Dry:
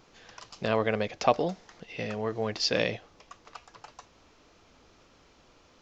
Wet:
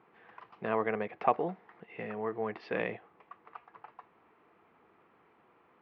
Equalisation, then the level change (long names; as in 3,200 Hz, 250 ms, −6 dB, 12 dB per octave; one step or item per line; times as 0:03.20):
loudspeaker in its box 220–2,000 Hz, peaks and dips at 270 Hz −8 dB, 570 Hz −10 dB, 1,500 Hz −4 dB
0.0 dB